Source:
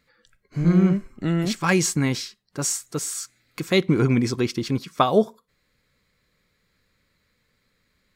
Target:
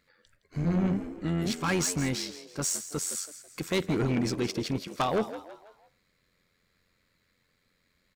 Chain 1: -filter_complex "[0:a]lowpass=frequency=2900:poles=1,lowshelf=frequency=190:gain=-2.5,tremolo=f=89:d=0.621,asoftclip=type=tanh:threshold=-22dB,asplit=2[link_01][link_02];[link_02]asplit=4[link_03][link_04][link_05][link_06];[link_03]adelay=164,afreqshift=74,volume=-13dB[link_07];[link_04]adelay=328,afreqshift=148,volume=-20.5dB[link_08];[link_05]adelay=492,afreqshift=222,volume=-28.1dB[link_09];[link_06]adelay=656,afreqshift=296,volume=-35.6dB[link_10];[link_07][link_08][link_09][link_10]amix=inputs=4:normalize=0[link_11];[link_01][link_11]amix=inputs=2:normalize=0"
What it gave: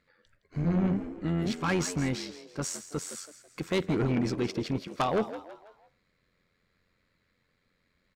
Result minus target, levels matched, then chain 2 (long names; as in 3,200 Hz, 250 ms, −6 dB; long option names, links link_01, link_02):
4,000 Hz band −3.0 dB
-filter_complex "[0:a]lowshelf=frequency=190:gain=-2.5,tremolo=f=89:d=0.621,asoftclip=type=tanh:threshold=-22dB,asplit=2[link_01][link_02];[link_02]asplit=4[link_03][link_04][link_05][link_06];[link_03]adelay=164,afreqshift=74,volume=-13dB[link_07];[link_04]adelay=328,afreqshift=148,volume=-20.5dB[link_08];[link_05]adelay=492,afreqshift=222,volume=-28.1dB[link_09];[link_06]adelay=656,afreqshift=296,volume=-35.6dB[link_10];[link_07][link_08][link_09][link_10]amix=inputs=4:normalize=0[link_11];[link_01][link_11]amix=inputs=2:normalize=0"